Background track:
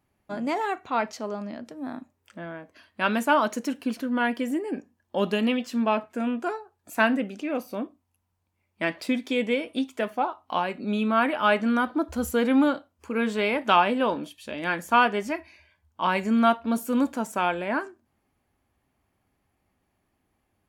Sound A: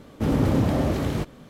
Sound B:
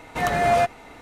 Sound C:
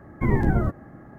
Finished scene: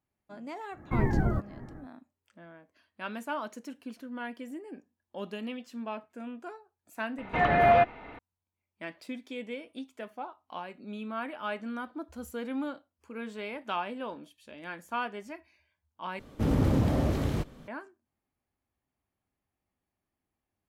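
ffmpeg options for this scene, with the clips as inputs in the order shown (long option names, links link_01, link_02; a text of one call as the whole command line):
ffmpeg -i bed.wav -i cue0.wav -i cue1.wav -i cue2.wav -filter_complex "[0:a]volume=-13.5dB[link_01];[3:a]asplit=2[link_02][link_03];[link_03]adelay=583.1,volume=-22dB,highshelf=frequency=4000:gain=-13.1[link_04];[link_02][link_04]amix=inputs=2:normalize=0[link_05];[2:a]lowpass=frequency=3100:width=0.5412,lowpass=frequency=3100:width=1.3066[link_06];[1:a]lowshelf=frequency=65:gain=8.5[link_07];[link_01]asplit=2[link_08][link_09];[link_08]atrim=end=16.194[link_10];[link_07]atrim=end=1.49,asetpts=PTS-STARTPTS,volume=-5.5dB[link_11];[link_09]atrim=start=17.676[link_12];[link_05]atrim=end=1.18,asetpts=PTS-STARTPTS,volume=-5.5dB,afade=type=in:duration=0.1,afade=type=out:start_time=1.08:duration=0.1,adelay=700[link_13];[link_06]atrim=end=1.01,asetpts=PTS-STARTPTS,volume=-1.5dB,afade=type=in:duration=0.004:curve=hsin,afade=type=out:start_time=1.006:duration=0.004:curve=hsin,adelay=7180[link_14];[link_10][link_11]acrossfade=duration=0.004:curve1=hsin:curve2=hsin[link_15];[link_15][link_12]acrossfade=duration=0.004:curve1=hsin:curve2=hsin[link_16];[link_16][link_13][link_14]amix=inputs=3:normalize=0" out.wav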